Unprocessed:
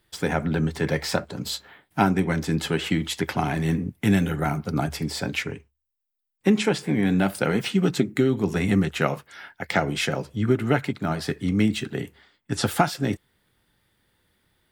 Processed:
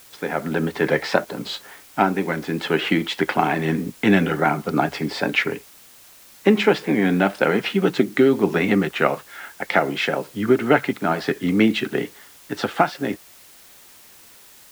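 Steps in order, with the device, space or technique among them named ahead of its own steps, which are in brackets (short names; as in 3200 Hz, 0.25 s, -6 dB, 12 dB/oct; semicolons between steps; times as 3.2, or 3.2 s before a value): dictaphone (BPF 270–3100 Hz; AGC; wow and flutter; white noise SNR 26 dB); gain -1 dB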